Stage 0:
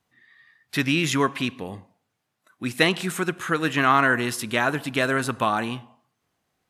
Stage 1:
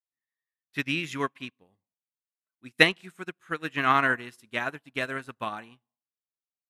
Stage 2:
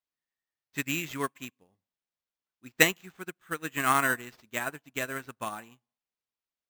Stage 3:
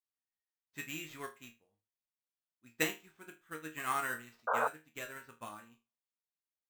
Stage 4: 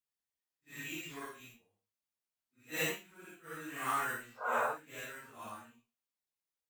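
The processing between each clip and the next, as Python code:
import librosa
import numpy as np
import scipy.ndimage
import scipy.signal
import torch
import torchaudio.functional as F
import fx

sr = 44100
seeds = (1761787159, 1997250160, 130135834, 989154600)

y1 = fx.dynamic_eq(x, sr, hz=2300.0, q=1.3, threshold_db=-35.0, ratio=4.0, max_db=5)
y1 = fx.upward_expand(y1, sr, threshold_db=-39.0, expansion=2.5)
y2 = fx.sample_hold(y1, sr, seeds[0], rate_hz=9900.0, jitter_pct=0)
y2 = y2 * librosa.db_to_amplitude(-2.5)
y3 = fx.resonator_bank(y2, sr, root=39, chord='sus4', decay_s=0.26)
y3 = fx.spec_paint(y3, sr, seeds[1], shape='noise', start_s=4.47, length_s=0.21, low_hz=430.0, high_hz=1600.0, level_db=-31.0)
y4 = fx.phase_scramble(y3, sr, seeds[2], window_ms=200)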